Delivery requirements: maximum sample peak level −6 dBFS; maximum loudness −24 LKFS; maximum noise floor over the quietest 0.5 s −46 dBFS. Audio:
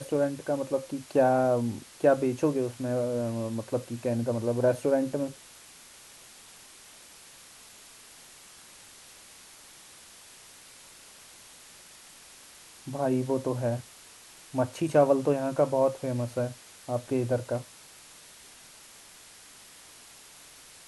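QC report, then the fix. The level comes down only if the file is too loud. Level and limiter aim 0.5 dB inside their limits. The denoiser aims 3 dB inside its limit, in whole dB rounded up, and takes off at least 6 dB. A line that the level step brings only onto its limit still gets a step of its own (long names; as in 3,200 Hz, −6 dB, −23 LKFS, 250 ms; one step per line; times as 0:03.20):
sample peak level −10.0 dBFS: in spec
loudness −28.5 LKFS: in spec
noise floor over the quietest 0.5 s −52 dBFS: in spec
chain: no processing needed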